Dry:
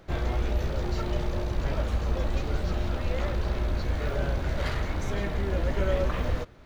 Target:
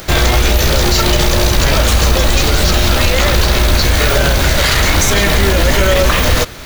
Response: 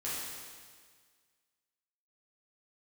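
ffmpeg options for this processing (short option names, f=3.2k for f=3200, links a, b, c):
-af "crystalizer=i=8:c=0,alimiter=level_in=19.5dB:limit=-1dB:release=50:level=0:latency=1,volume=-1dB"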